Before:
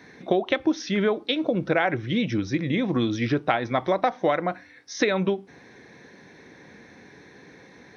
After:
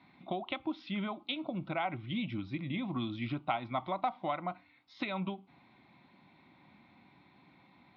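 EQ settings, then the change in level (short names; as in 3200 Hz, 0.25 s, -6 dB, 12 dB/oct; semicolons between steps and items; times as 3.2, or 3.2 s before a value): air absorption 130 m; low shelf 86 Hz -11.5 dB; fixed phaser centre 1700 Hz, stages 6; -6.0 dB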